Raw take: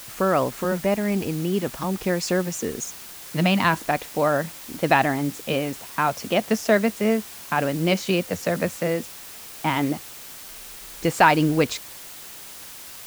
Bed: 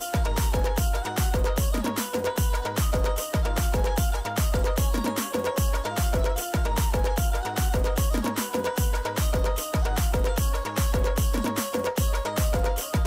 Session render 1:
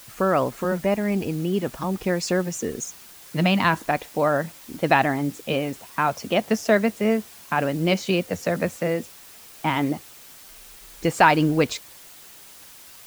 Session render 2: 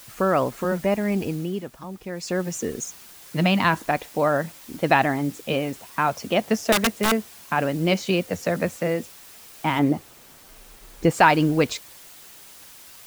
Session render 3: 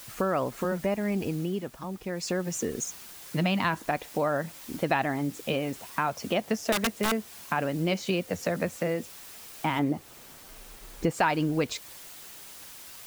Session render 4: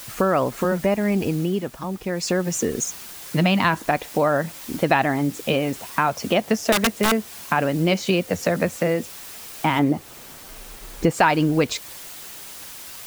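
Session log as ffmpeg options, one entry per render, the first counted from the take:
-af "afftdn=nr=6:nf=-40"
-filter_complex "[0:a]asettb=1/sr,asplit=3[s0][s1][s2];[s0]atrim=end=6.724[s3];[s1]atrim=start=6.72:end=7.12,asetpts=PTS-STARTPTS,afade=t=in:d=0.004:c=qsin,afade=t=out:st=0.396:d=0.004:c=qsin,aeval=exprs='(mod(4.73*val(0)+1,2)-1)/4.73':c=same[s4];[s2]atrim=start=7.116[s5];[s3][s4]acrossfade=d=0.004:c1=hsin:c2=qsin[s6];[s6][s5]acrossfade=d=0.004:c1=qsin:c2=hsin,asettb=1/sr,asplit=3[s7][s8][s9];[s7]atrim=end=9.794[s10];[s8]atrim=start=9.79:end=11.11,asetpts=PTS-STARTPTS,afade=t=in:d=0.004:c=qsin,afade=t=out:st=1.316:d=0.004:c=qsin,tiltshelf=f=1300:g=4.5[s11];[s9]atrim=start=11.106[s12];[s10][s11]acrossfade=d=0.004:c1=hsin:c2=qsin[s13];[s13][s12]acrossfade=d=0.004:c1=qsin:c2=hsin,asplit=3[s14][s15][s16];[s14]atrim=end=1.69,asetpts=PTS-STARTPTS,afade=t=out:st=1.28:d=0.41:silence=0.316228[s17];[s15]atrim=start=1.69:end=2.11,asetpts=PTS-STARTPTS,volume=0.316[s18];[s16]atrim=start=2.11,asetpts=PTS-STARTPTS,afade=t=in:d=0.41:silence=0.316228[s19];[s17][s18][s19]concat=n=3:v=0:a=1"
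-af "acompressor=threshold=0.0398:ratio=2"
-af "volume=2.37"

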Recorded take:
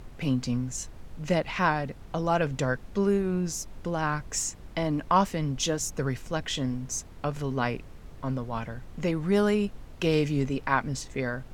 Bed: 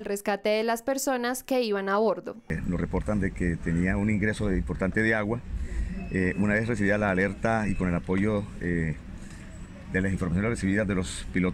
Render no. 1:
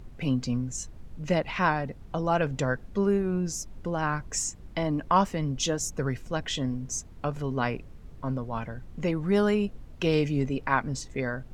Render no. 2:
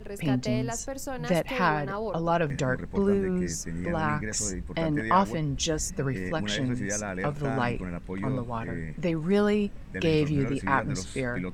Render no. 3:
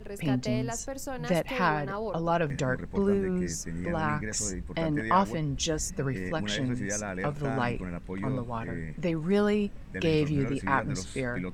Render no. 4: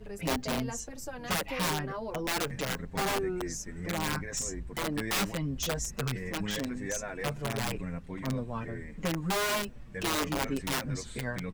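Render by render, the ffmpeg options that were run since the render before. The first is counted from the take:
-af "afftdn=nr=7:nf=-46"
-filter_complex "[1:a]volume=0.376[s0];[0:a][s0]amix=inputs=2:normalize=0"
-af "volume=0.841"
-filter_complex "[0:a]aeval=exprs='(mod(10.6*val(0)+1,2)-1)/10.6':c=same,asplit=2[s0][s1];[s1]adelay=6.7,afreqshift=-0.79[s2];[s0][s2]amix=inputs=2:normalize=1"

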